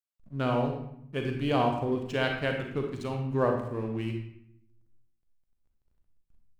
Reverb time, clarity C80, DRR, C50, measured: 0.75 s, 7.0 dB, 2.0 dB, 3.5 dB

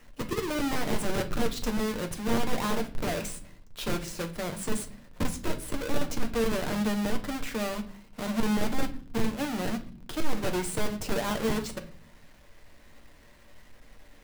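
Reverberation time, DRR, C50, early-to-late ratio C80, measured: no single decay rate, 4.5 dB, 13.5 dB, 19.5 dB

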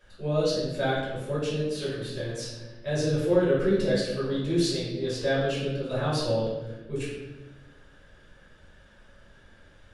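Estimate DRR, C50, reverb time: -8.5 dB, 0.5 dB, 1.2 s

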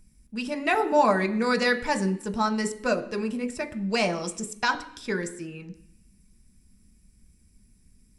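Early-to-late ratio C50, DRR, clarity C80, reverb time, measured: 14.5 dB, 6.5 dB, 17.0 dB, 0.65 s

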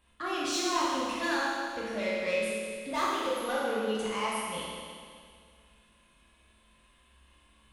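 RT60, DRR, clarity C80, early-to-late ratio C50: 2.1 s, -8.0 dB, -1.0 dB, -3.0 dB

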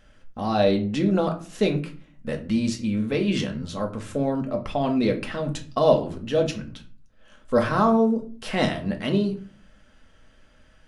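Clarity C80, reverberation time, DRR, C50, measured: 17.5 dB, 0.40 s, 2.5 dB, 12.5 dB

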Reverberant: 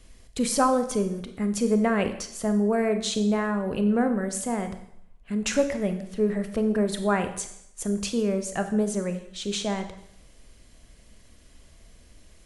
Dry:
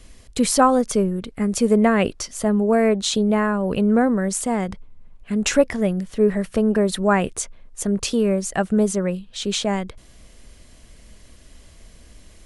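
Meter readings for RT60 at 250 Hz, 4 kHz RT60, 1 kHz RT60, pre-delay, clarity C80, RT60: 0.70 s, 0.70 s, 0.75 s, 28 ms, 13.0 dB, 0.75 s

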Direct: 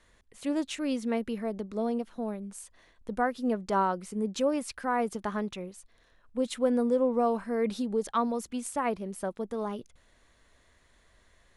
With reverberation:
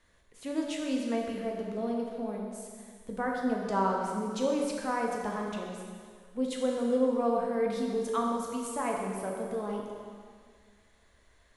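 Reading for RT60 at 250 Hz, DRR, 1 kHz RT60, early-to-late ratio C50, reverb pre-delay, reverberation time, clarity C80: 2.1 s, -1.0 dB, 2.0 s, 1.5 dB, 5 ms, 2.0 s, 2.5 dB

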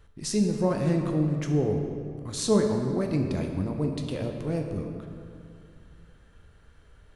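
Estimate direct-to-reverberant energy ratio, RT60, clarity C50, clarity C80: 3.0 dB, 2.4 s, 4.5 dB, 5.5 dB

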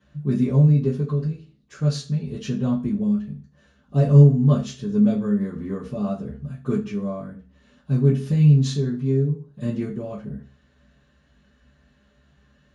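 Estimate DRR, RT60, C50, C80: -9.0 dB, 0.40 s, 10.0 dB, 15.5 dB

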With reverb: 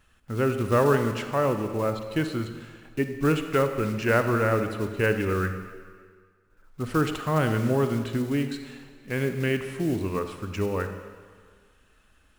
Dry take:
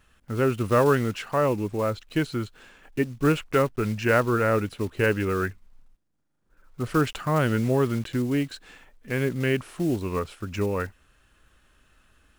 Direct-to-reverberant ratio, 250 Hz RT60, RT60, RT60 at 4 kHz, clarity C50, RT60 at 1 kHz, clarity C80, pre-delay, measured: 7.5 dB, 1.6 s, 1.8 s, 1.6 s, 8.0 dB, 1.8 s, 9.0 dB, 37 ms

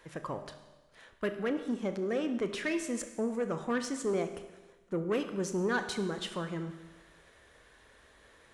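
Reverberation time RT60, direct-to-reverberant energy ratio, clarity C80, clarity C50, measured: 1.2 s, 7.5 dB, 11.5 dB, 10.0 dB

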